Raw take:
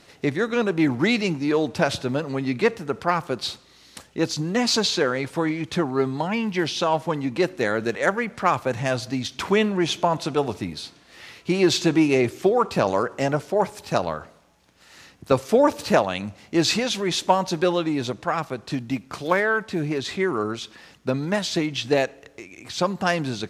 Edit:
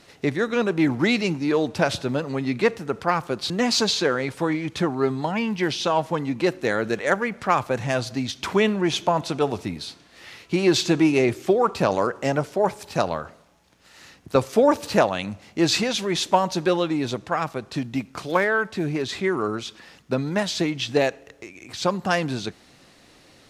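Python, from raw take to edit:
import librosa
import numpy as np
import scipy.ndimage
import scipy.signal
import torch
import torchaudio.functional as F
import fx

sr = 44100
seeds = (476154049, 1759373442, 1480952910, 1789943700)

y = fx.edit(x, sr, fx.cut(start_s=3.5, length_s=0.96), tone=tone)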